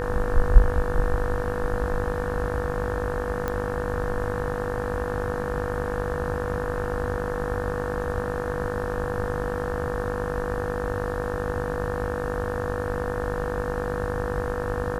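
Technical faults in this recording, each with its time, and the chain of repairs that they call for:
buzz 50 Hz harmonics 36 -31 dBFS
whine 490 Hz -29 dBFS
3.48 s: pop -14 dBFS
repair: de-click; de-hum 50 Hz, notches 36; band-stop 490 Hz, Q 30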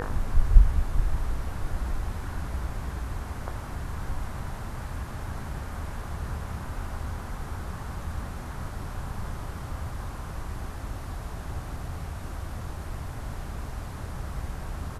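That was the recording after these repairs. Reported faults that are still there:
nothing left

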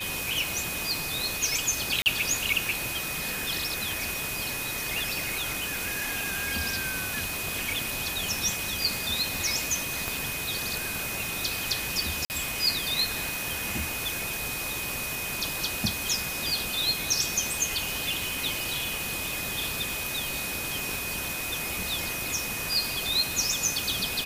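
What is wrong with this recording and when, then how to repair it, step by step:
whine 2.5 kHz -35 dBFS
2.02–2.06 s: dropout 39 ms
10.08 s: pop
12.25–12.30 s: dropout 49 ms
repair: de-click; band-stop 2.5 kHz, Q 30; interpolate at 2.02 s, 39 ms; interpolate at 12.25 s, 49 ms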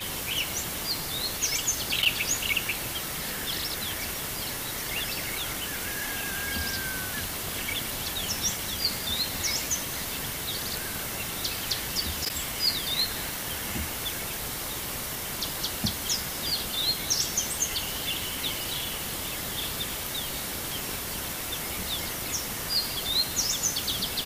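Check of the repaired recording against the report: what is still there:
nothing left

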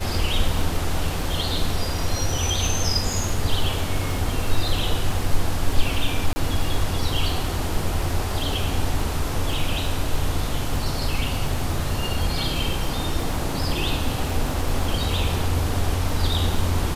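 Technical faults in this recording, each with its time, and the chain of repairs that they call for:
crackle 40 per s -28 dBFS
6.33–6.36 s: dropout 30 ms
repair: de-click; interpolate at 6.33 s, 30 ms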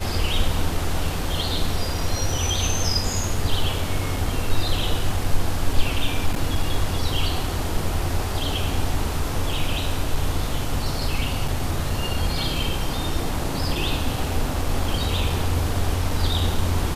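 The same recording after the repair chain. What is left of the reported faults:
nothing left

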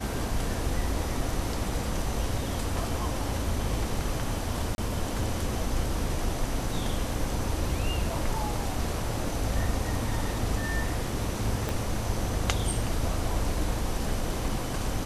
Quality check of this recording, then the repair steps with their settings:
4.75–4.78 s: dropout 31 ms
11.69 s: pop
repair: de-click; interpolate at 4.75 s, 31 ms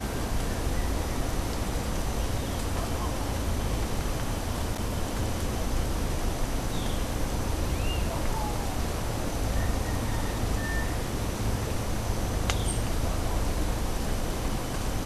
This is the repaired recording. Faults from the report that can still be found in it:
11.69 s: pop

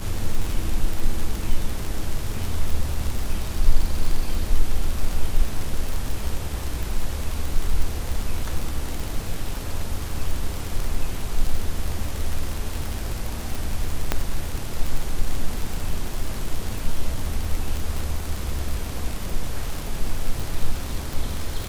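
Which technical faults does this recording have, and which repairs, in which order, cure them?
crackle 55 per s -23 dBFS
14.12 s: pop -6 dBFS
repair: de-click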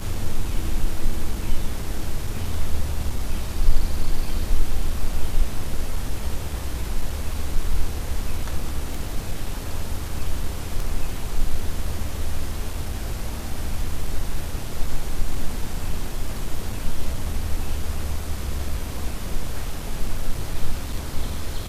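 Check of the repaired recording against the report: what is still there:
14.12 s: pop

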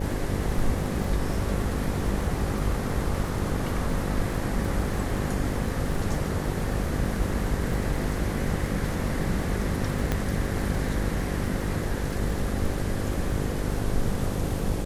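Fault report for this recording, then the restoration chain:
buzz 50 Hz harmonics 11 -32 dBFS
crackle 26 per s -31 dBFS
10.12 s: pop -11 dBFS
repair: de-click; de-hum 50 Hz, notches 11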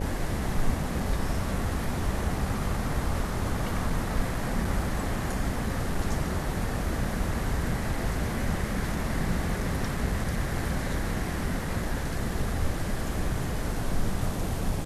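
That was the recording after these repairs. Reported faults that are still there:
nothing left

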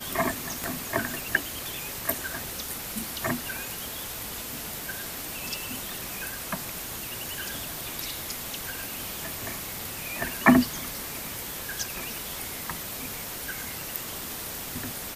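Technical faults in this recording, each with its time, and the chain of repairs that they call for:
0.64 s: pop -15 dBFS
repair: de-click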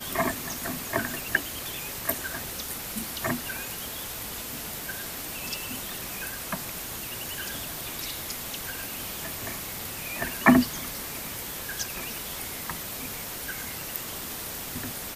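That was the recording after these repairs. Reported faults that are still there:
nothing left

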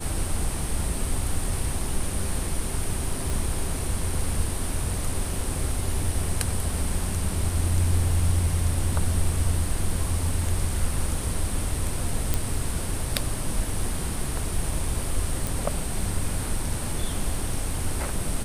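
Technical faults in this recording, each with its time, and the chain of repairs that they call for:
3.30 s: pop
12.34 s: pop
15.47 s: pop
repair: de-click

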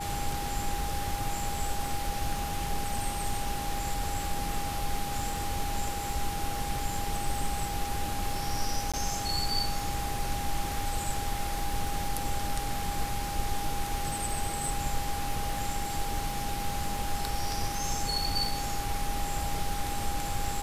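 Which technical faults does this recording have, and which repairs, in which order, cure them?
crackle 23 per s -35 dBFS
whine 810 Hz -35 dBFS
8.92–8.94 s: dropout 16 ms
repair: de-click; band-stop 810 Hz, Q 30; interpolate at 8.92 s, 16 ms

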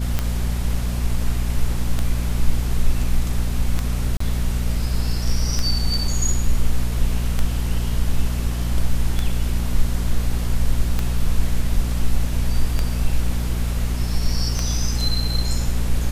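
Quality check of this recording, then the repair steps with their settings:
hum 60 Hz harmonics 4 -23 dBFS
tick 33 1/3 rpm -7 dBFS
4.17–4.20 s: dropout 34 ms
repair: de-click; de-hum 60 Hz, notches 4; interpolate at 4.17 s, 34 ms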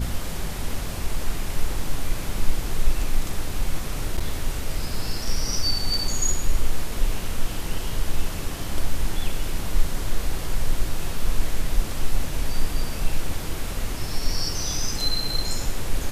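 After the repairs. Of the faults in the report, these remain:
nothing left

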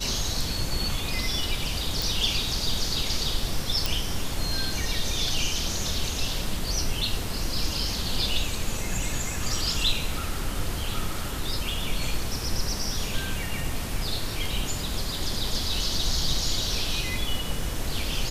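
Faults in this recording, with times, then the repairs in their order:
2.02 s: pop
3.86 s: pop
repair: de-click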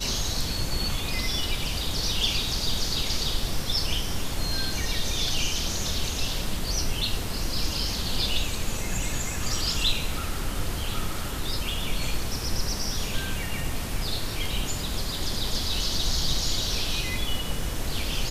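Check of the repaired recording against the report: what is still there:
nothing left

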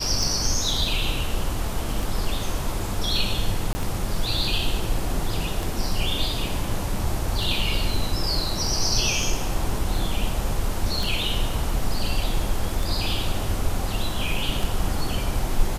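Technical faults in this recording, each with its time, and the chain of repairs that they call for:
tick 33 1/3 rpm
3.73–3.75 s: dropout 20 ms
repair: de-click; interpolate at 3.73 s, 20 ms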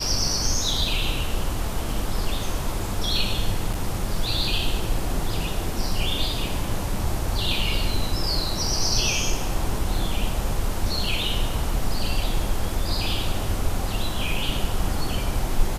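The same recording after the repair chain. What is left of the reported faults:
nothing left

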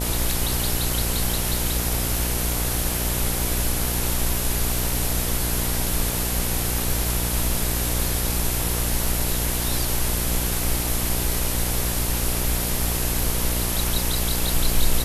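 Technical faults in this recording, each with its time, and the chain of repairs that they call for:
buzz 60 Hz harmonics 16 -27 dBFS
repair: de-hum 60 Hz, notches 16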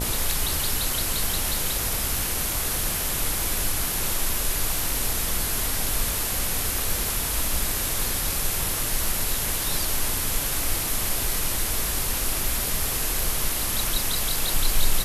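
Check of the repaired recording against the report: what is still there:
nothing left

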